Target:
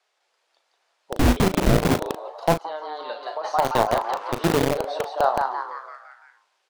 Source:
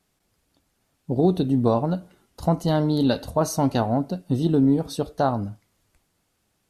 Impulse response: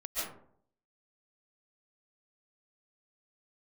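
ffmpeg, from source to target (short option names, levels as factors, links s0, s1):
-filter_complex "[0:a]asettb=1/sr,asplit=3[s0][s1][s2];[s0]atrim=end=4.044[s3];[s1]atrim=start=4.04:end=4.63,asetpts=PTS-STARTPTS,afade=t=in:d=0.004:c=qsin,afade=t=out:st=0.586:d=0.004:c=qsin,aeval=exprs='val(0)+0.5*0.0158*sgn(val(0))':c=same[s4];[s2]atrim=start=4.626[s5];[s3][s4]acrossfade=d=0.004:c1=hsin:c2=qsin[s6];[s6][s5]acrossfade=d=0.004:c1=qsin:c2=hsin,acrossover=split=3900[s7][s8];[s8]acompressor=threshold=0.00178:ratio=4:attack=1:release=60[s9];[s7][s9]amix=inputs=2:normalize=0,highpass=200,lowpass=5000,equalizer=f=280:t=o:w=0.26:g=-14.5,bandreject=f=50:t=h:w=6,bandreject=f=100:t=h:w=6,bandreject=f=150:t=h:w=6,bandreject=f=200:t=h:w=6,bandreject=f=250:t=h:w=6,bandreject=f=300:t=h:w=6,asplit=3[s10][s11][s12];[s10]afade=t=out:st=1.15:d=0.02[s13];[s11]afreqshift=-430,afade=t=in:st=1.15:d=0.02,afade=t=out:st=1.94:d=0.02[s14];[s12]afade=t=in:st=1.94:d=0.02[s15];[s13][s14][s15]amix=inputs=3:normalize=0,asplit=2[s16][s17];[s17]asplit=6[s18][s19][s20][s21][s22][s23];[s18]adelay=169,afreqshift=140,volume=0.562[s24];[s19]adelay=338,afreqshift=280,volume=0.275[s25];[s20]adelay=507,afreqshift=420,volume=0.135[s26];[s21]adelay=676,afreqshift=560,volume=0.0661[s27];[s22]adelay=845,afreqshift=700,volume=0.0324[s28];[s23]adelay=1014,afreqshift=840,volume=0.0158[s29];[s24][s25][s26][s27][s28][s29]amix=inputs=6:normalize=0[s30];[s16][s30]amix=inputs=2:normalize=0,asplit=3[s31][s32][s33];[s31]afade=t=out:st=2.54:d=0.02[s34];[s32]acompressor=threshold=0.0316:ratio=5,afade=t=in:st=2.54:d=0.02,afade=t=out:st=3.43:d=0.02[s35];[s33]afade=t=in:st=3.43:d=0.02[s36];[s34][s35][s36]amix=inputs=3:normalize=0,acrossover=split=450|3000[s37][s38][s39];[s37]acrusher=bits=3:mix=0:aa=0.000001[s40];[s40][s38][s39]amix=inputs=3:normalize=0,asplit=2[s41][s42];[s42]adelay=37,volume=0.316[s43];[s41][s43]amix=inputs=2:normalize=0,volume=1.5"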